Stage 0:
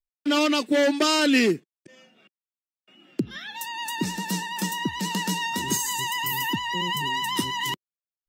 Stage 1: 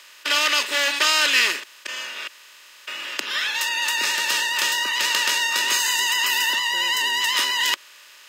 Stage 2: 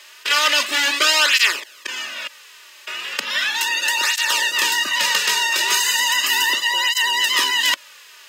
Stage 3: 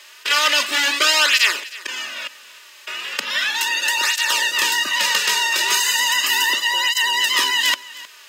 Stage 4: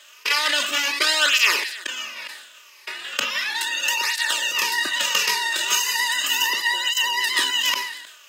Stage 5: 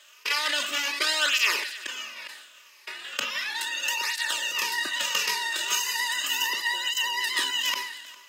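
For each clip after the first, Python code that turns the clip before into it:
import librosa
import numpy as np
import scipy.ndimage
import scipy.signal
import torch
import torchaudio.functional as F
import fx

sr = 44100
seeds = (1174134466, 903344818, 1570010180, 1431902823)

y1 = fx.bin_compress(x, sr, power=0.4)
y1 = scipy.signal.sosfilt(scipy.signal.butter(2, 1400.0, 'highpass', fs=sr, output='sos'), y1)
y1 = fx.high_shelf(y1, sr, hz=8200.0, db=-10.0)
y1 = y1 * 10.0 ** (4.0 / 20.0)
y2 = fx.flanger_cancel(y1, sr, hz=0.36, depth_ms=4.2)
y2 = y2 * 10.0 ** (6.0 / 20.0)
y3 = y2 + 10.0 ** (-19.0 / 20.0) * np.pad(y2, (int(312 * sr / 1000.0), 0))[:len(y2)]
y4 = fx.spec_ripple(y3, sr, per_octave=0.84, drift_hz=-1.6, depth_db=7)
y4 = fx.transient(y4, sr, attack_db=5, sustain_db=-2)
y4 = fx.sustainer(y4, sr, db_per_s=61.0)
y4 = y4 * 10.0 ** (-5.5 / 20.0)
y5 = y4 + 10.0 ** (-20.0 / 20.0) * np.pad(y4, (int(405 * sr / 1000.0), 0))[:len(y4)]
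y5 = y5 * 10.0 ** (-5.5 / 20.0)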